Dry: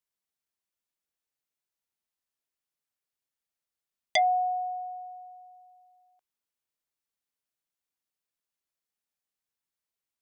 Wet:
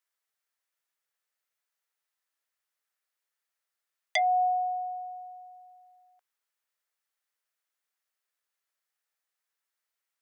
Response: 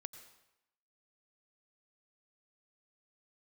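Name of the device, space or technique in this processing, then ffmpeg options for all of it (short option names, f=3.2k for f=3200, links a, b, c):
laptop speaker: -af "highpass=f=440:w=0.5412,highpass=f=440:w=1.3066,equalizer=f=1.3k:t=o:w=0.25:g=4.5,equalizer=f=1.8k:t=o:w=0.57:g=6,alimiter=limit=-17.5dB:level=0:latency=1:release=276,volume=2.5dB"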